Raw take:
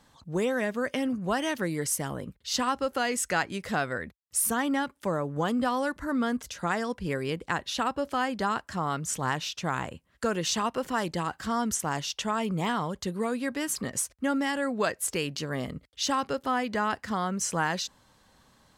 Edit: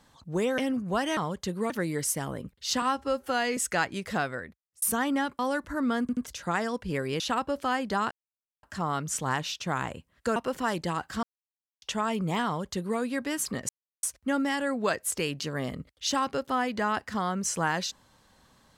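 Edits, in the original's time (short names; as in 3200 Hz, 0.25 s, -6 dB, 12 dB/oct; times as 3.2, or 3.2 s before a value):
0.58–0.94 cut
2.65–3.15 stretch 1.5×
3.73–4.4 fade out
4.97–5.71 cut
6.33 stutter 0.08 s, 3 plays
7.36–7.69 cut
8.6 insert silence 0.52 s
10.33–10.66 cut
11.53–12.12 mute
12.76–13.29 copy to 1.53
13.99 insert silence 0.34 s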